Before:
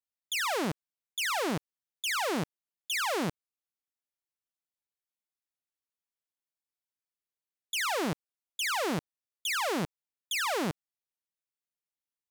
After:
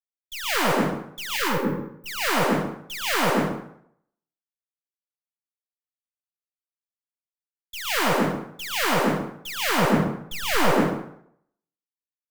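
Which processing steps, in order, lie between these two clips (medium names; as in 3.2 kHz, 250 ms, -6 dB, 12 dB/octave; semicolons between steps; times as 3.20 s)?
tracing distortion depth 0.17 ms; 9.78–10.63 s: bass shelf 380 Hz +6.5 dB; waveshaping leveller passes 1; 1.36–2.06 s: brick-wall FIR band-stop 590–12000 Hz; plate-style reverb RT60 1.2 s, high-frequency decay 0.6×, pre-delay 105 ms, DRR -5 dB; three bands expanded up and down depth 100%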